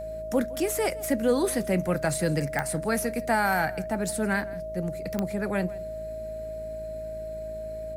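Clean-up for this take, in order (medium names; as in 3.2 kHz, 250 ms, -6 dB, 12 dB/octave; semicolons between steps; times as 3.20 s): de-click; de-hum 54.7 Hz, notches 12; band-stop 630 Hz, Q 30; inverse comb 164 ms -20.5 dB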